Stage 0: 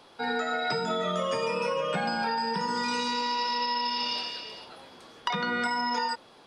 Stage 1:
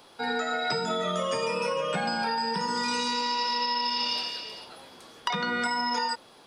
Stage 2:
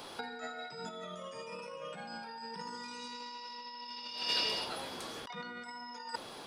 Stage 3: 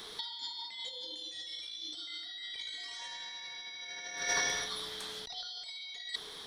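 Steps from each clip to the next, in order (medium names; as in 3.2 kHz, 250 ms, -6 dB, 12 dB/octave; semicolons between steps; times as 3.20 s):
treble shelf 7.8 kHz +11 dB
compressor with a negative ratio -36 dBFS, ratio -0.5; trim -3 dB
four frequency bands reordered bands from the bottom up 3412; trim +1 dB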